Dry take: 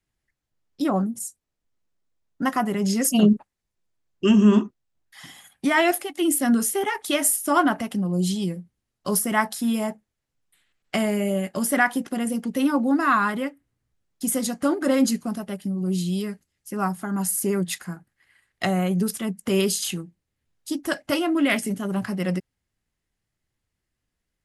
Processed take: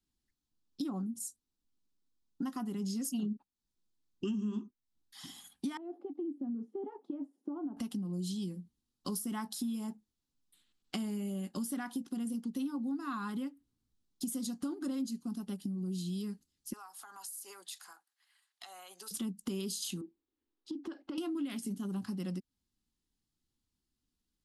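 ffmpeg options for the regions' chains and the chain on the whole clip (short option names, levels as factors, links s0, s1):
-filter_complex "[0:a]asettb=1/sr,asplit=3[s0][s1][s2];[s0]atrim=end=5.774[s3];[s1]atrim=start=5.77:end=7.77,asetpts=PTS-STARTPTS,afade=t=in:d=0.004:c=qsin,afade=t=out:st=1.996:d=0.004:c=qsin,acompressor=threshold=0.0398:ratio=2.5:attack=3.2:release=140:knee=1:detection=peak,asuperpass=centerf=390:order=4:qfactor=0.87[s4];[s2]atrim=start=7.766[s5];[s3][s4]acrossfade=d=0.004:c1=hsin:c2=qsin[s6];[s6][s5]acrossfade=d=0.004:c1=qsin:c2=hsin,asettb=1/sr,asplit=3[s7][s8][s9];[s7]atrim=end=16.734[s10];[s8]atrim=start=16.73:end=19.11,asetpts=PTS-STARTPTS,afade=t=in:d=0.004:c=qsin,afade=t=out:st=2.376:d=0.004:c=qsin,highpass=f=690:w=0.5412,highpass=f=690:w=1.3066,acompressor=threshold=0.0126:ratio=6:attack=3.2:release=140:knee=1:detection=peak[s11];[s9]atrim=start=19.106[s12];[s10][s11]acrossfade=d=0.004:c1=hsin:c2=qsin[s13];[s13][s12]acrossfade=d=0.004:c1=qsin:c2=hsin,asettb=1/sr,asplit=3[s14][s15][s16];[s14]atrim=end=20.014[s17];[s15]atrim=start=20.01:end=21.18,asetpts=PTS-STARTPTS,afade=t=in:d=0.004:c=qsin,afade=t=out:st=1.166:d=0.004:c=qsin,lowpass=2500,lowshelf=f=240:t=q:w=3:g=-11,acompressor=threshold=0.0224:ratio=6:attack=3.2:release=140:knee=1:detection=peak[s18];[s16]atrim=start=21.176[s19];[s17][s18]acrossfade=d=0.004:c1=hsin:c2=qsin[s20];[s20][s19]acrossfade=d=0.004:c1=qsin:c2=hsin,equalizer=f=125:t=o:w=1:g=-6,equalizer=f=250:t=o:w=1:g=8,equalizer=f=500:t=o:w=1:g=-6,equalizer=f=2000:t=o:w=1:g=-12,equalizer=f=4000:t=o:w=1:g=6,acompressor=threshold=0.0282:ratio=5,equalizer=f=630:t=o:w=0.23:g=-12,volume=0.596"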